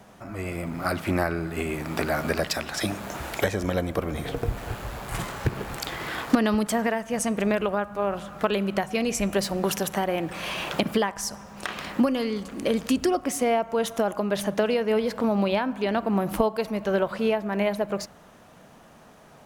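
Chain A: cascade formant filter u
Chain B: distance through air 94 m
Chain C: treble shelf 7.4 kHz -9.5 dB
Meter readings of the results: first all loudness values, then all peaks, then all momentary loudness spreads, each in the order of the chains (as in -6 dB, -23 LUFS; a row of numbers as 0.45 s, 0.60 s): -37.0 LUFS, -27.0 LUFS, -27.0 LUFS; -12.0 dBFS, -9.0 dBFS, -8.5 dBFS; 15 LU, 10 LU, 9 LU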